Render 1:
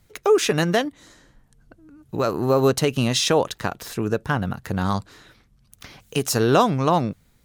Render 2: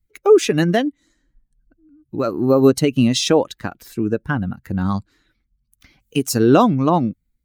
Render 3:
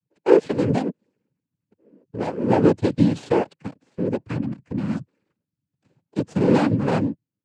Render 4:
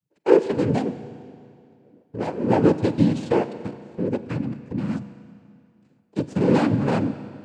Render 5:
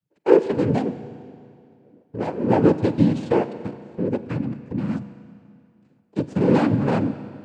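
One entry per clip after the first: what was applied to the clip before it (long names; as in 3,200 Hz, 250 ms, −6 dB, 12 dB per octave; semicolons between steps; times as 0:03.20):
spectral dynamics exaggerated over time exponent 1.5; parametric band 280 Hz +8.5 dB 1.2 octaves; level +2.5 dB
running median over 41 samples; cochlear-implant simulation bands 8; level −2.5 dB
convolution reverb RT60 2.4 s, pre-delay 35 ms, DRR 12 dB; level −1 dB
high-shelf EQ 4,000 Hz −6.5 dB; level +1 dB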